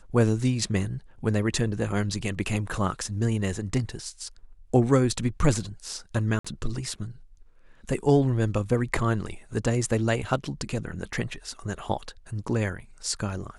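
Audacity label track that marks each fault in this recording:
6.390000	6.450000	drop-out 55 ms

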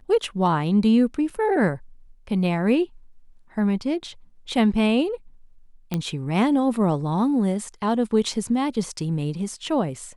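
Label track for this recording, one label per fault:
1.300000	1.300000	drop-out 3.6 ms
5.940000	5.940000	click −12 dBFS

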